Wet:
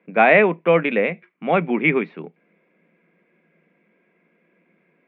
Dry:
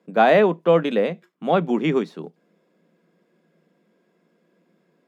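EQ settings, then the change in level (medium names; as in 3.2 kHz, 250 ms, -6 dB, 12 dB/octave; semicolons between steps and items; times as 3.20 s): resonant low-pass 2.3 kHz, resonance Q 6.8; distance through air 140 m; 0.0 dB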